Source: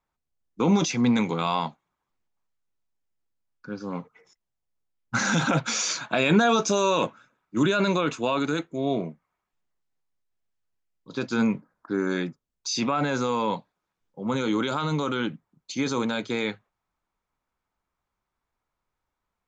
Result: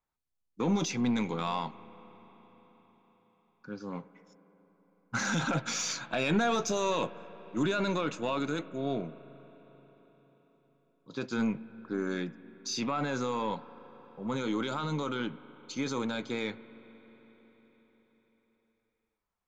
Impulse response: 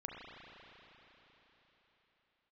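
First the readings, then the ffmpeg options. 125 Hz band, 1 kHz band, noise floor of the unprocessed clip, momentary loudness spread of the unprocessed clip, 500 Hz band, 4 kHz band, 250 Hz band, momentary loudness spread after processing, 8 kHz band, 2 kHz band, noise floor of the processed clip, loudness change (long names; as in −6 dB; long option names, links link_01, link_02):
−7.0 dB, −7.0 dB, −84 dBFS, 13 LU, −7.0 dB, −7.0 dB, −7.0 dB, 14 LU, can't be measured, −7.0 dB, −80 dBFS, −7.0 dB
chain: -filter_complex "[0:a]aeval=exprs='(tanh(4.47*val(0)+0.15)-tanh(0.15))/4.47':channel_layout=same,asplit=2[link_01][link_02];[1:a]atrim=start_sample=2205,asetrate=39249,aresample=44100[link_03];[link_02][link_03]afir=irnorm=-1:irlink=0,volume=-13.5dB[link_04];[link_01][link_04]amix=inputs=2:normalize=0,volume=-7dB"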